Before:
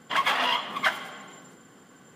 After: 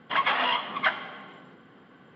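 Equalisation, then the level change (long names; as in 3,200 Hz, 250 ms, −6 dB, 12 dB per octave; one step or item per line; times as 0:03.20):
low-pass filter 3,400 Hz 24 dB per octave
0.0 dB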